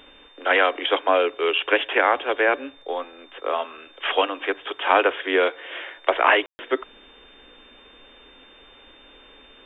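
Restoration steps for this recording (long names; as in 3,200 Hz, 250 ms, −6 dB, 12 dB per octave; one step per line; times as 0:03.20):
notch filter 3,600 Hz, Q 30
ambience match 0:06.46–0:06.59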